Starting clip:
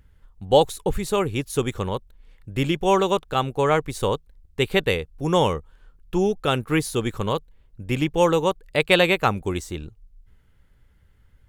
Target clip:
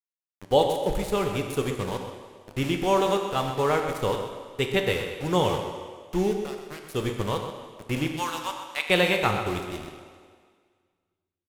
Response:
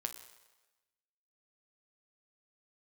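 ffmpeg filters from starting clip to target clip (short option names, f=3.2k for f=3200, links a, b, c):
-filter_complex "[0:a]asplit=3[a][b][c];[a]afade=t=out:st=6.34:d=0.02[d];[b]acompressor=threshold=-31dB:ratio=12,afade=t=in:st=6.34:d=0.02,afade=t=out:st=6.88:d=0.02[e];[c]afade=t=in:st=6.88:d=0.02[f];[d][e][f]amix=inputs=3:normalize=0,asettb=1/sr,asplit=3[g][h][i];[g]atrim=end=8.084[j];[h]atrim=start=8.08:end=8.85,asetpts=PTS-STARTPTS,afade=t=in:d=0.004:c=qsin,afade=t=out:st=0.766:d=0.004:c=qsin,highpass=f=850:w=0.5412,highpass=f=850:w=1.3066[k];[i]atrim=start=8.846[l];[j][k]acrossfade=d=0.004:c1=hsin:c2=qsin[m];[m][l]acrossfade=d=0.004:c1=qsin:c2=hsin,aeval=exprs='val(0)*gte(abs(val(0)),0.0355)':c=same,asplit=2[n][o];[o]adelay=128.3,volume=-9dB,highshelf=f=4k:g=-2.89[p];[n][p]amix=inputs=2:normalize=0[q];[1:a]atrim=start_sample=2205,asetrate=26901,aresample=44100[r];[q][r]afir=irnorm=-1:irlink=0,volume=-5.5dB"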